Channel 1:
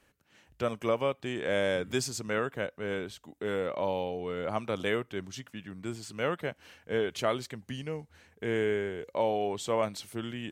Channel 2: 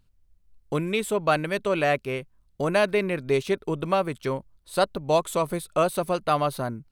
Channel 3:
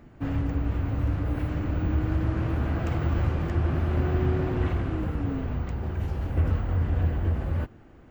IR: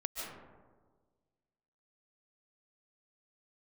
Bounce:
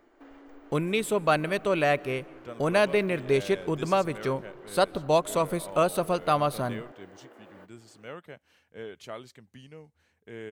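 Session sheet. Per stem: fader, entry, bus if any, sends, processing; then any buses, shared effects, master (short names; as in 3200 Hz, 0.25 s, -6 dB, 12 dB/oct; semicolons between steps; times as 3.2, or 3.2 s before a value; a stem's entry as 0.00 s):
-11.0 dB, 1.85 s, no send, dry
-1.5 dB, 0.00 s, send -21.5 dB, gate -57 dBFS, range -10 dB
-4.5 dB, 0.00 s, no send, steep high-pass 300 Hz; notch 2600 Hz; compressor 3:1, threshold -47 dBFS, peak gain reduction 14 dB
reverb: on, RT60 1.5 s, pre-delay 0.105 s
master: dry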